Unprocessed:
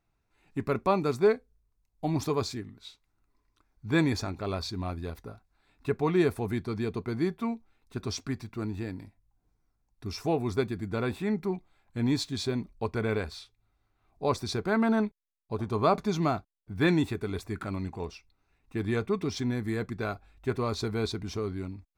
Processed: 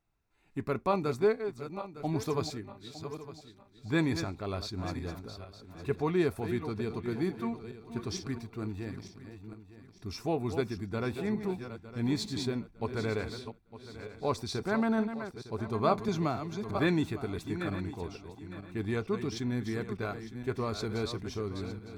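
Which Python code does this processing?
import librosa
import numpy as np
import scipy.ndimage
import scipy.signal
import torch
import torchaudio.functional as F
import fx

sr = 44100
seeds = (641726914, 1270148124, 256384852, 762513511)

y = fx.reverse_delay_fb(x, sr, ms=454, feedback_pct=53, wet_db=-9.5)
y = fx.band_squash(y, sr, depth_pct=70, at=(16.08, 16.78))
y = y * 10.0 ** (-3.5 / 20.0)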